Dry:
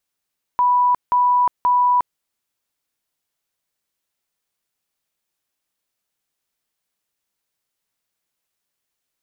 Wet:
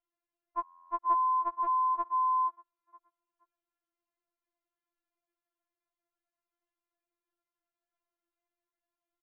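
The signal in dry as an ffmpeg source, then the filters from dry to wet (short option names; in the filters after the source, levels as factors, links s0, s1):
-f lavfi -i "aevalsrc='0.237*sin(2*PI*985*mod(t,0.53))*lt(mod(t,0.53),352/985)':d=1.59:s=44100"
-filter_complex "[0:a]lowpass=1300,asplit=4[s0][s1][s2][s3];[s1]adelay=473,afreqshift=41,volume=0.119[s4];[s2]adelay=946,afreqshift=82,volume=0.0442[s5];[s3]adelay=1419,afreqshift=123,volume=0.0162[s6];[s0][s4][s5][s6]amix=inputs=4:normalize=0,afftfilt=real='re*4*eq(mod(b,16),0)':imag='im*4*eq(mod(b,16),0)':win_size=2048:overlap=0.75"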